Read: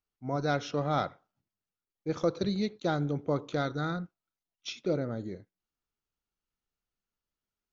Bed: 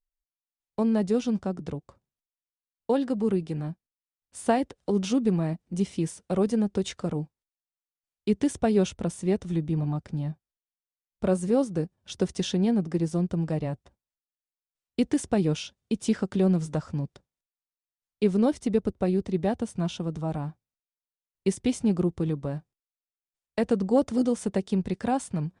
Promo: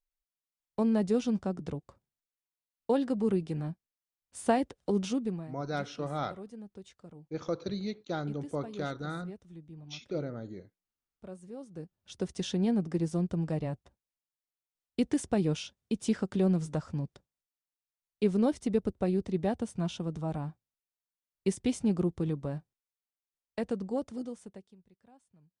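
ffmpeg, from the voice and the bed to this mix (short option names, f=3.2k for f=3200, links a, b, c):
-filter_complex "[0:a]adelay=5250,volume=-5dB[a];[1:a]volume=14dB,afade=t=out:st=4.9:d=0.63:silence=0.125893,afade=t=in:st=11.6:d=1.08:silence=0.141254,afade=t=out:st=22.91:d=1.85:silence=0.0316228[b];[a][b]amix=inputs=2:normalize=0"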